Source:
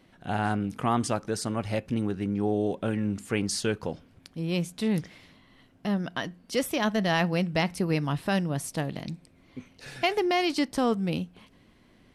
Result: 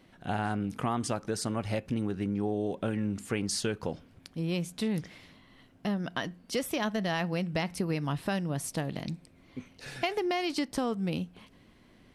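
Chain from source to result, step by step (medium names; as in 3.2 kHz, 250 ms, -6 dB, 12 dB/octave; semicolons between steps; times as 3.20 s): compression 4:1, threshold -27 dBFS, peak gain reduction 6.5 dB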